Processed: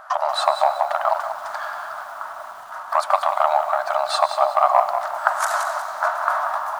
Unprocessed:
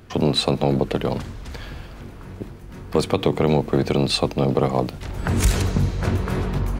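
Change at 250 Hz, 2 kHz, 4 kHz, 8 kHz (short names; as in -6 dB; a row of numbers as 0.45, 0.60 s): under -40 dB, +6.5 dB, -4.5 dB, -2.5 dB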